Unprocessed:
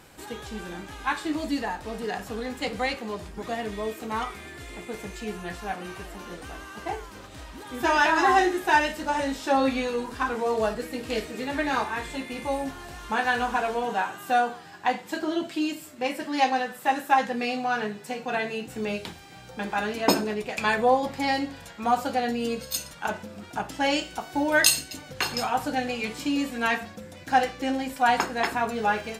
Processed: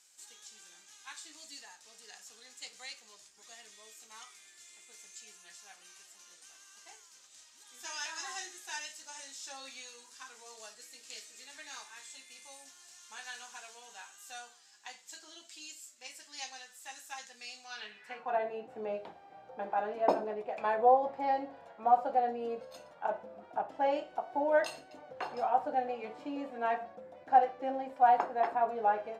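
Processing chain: band-pass sweep 6.7 kHz -> 670 Hz, 17.63–18.39 s

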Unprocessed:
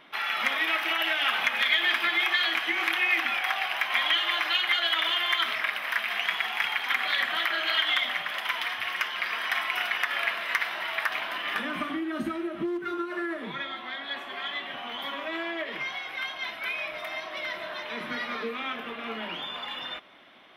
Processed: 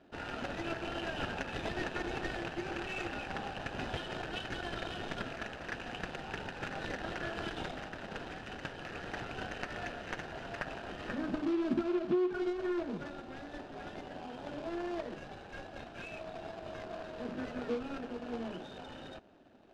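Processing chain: median filter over 41 samples; low-pass 4.7 kHz 12 dB/octave; peaking EQ 1.9 kHz -8 dB 0.21 oct; speed mistake 24 fps film run at 25 fps; trim +1 dB

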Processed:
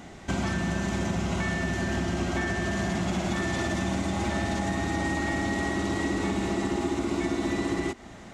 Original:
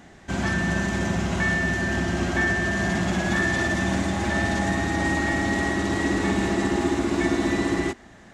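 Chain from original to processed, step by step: band-stop 1.7 kHz, Q 6.2; compression 4:1, threshold -30 dBFS, peak gain reduction 10 dB; trim +4 dB

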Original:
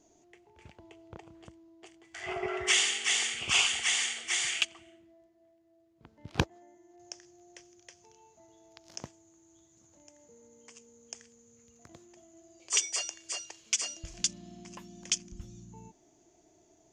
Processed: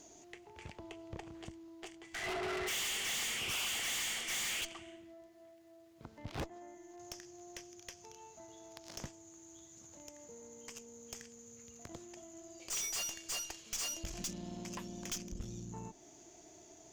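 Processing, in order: valve stage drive 43 dB, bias 0.6; tape noise reduction on one side only encoder only; trim +7 dB

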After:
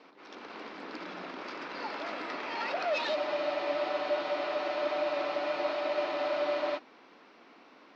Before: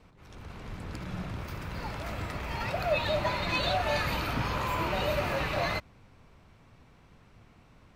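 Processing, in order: self-modulated delay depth 0.096 ms; in parallel at +1 dB: compression, threshold -41 dBFS, peak gain reduction 16.5 dB; on the sum: saturation -23.5 dBFS, distortion -15 dB; elliptic band-pass 280–5100 Hz, stop band 40 dB; spectral freeze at 3.18 s, 3.59 s

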